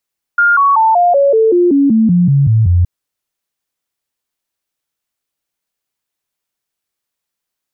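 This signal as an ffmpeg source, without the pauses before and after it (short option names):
-f lavfi -i "aevalsrc='0.473*clip(min(mod(t,0.19),0.19-mod(t,0.19))/0.005,0,1)*sin(2*PI*1410*pow(2,-floor(t/0.19)/3)*mod(t,0.19))':d=2.47:s=44100"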